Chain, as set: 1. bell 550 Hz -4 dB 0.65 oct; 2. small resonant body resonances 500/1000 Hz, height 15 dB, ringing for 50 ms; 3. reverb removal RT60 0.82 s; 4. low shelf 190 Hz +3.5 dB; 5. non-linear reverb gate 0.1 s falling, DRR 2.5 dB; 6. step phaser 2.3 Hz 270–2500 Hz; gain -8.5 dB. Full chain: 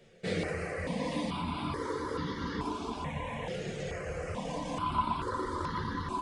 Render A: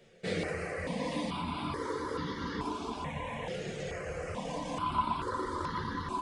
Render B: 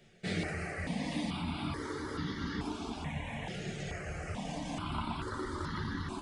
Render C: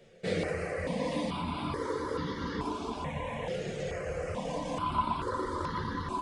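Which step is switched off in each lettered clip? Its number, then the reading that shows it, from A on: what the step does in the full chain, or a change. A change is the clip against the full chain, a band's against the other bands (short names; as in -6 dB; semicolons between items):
4, 125 Hz band -2.5 dB; 2, 1 kHz band -7.0 dB; 1, 500 Hz band +2.5 dB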